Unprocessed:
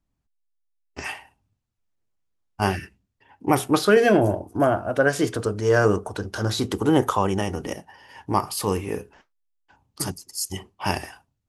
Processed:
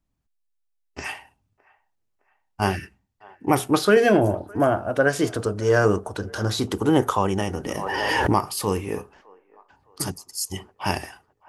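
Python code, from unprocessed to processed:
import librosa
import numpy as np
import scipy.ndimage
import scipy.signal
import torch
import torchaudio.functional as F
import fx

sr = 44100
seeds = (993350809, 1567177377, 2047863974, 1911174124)

p1 = x + fx.echo_wet_bandpass(x, sr, ms=612, feedback_pct=41, hz=900.0, wet_db=-23.0, dry=0)
y = fx.pre_swell(p1, sr, db_per_s=20.0, at=(7.66, 8.47))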